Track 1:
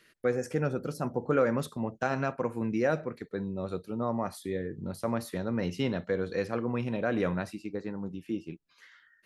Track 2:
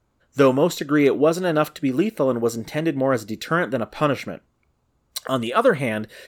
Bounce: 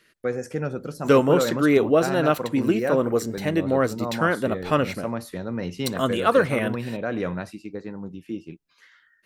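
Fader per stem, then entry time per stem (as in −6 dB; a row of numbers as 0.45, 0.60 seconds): +1.5, −1.0 decibels; 0.00, 0.70 seconds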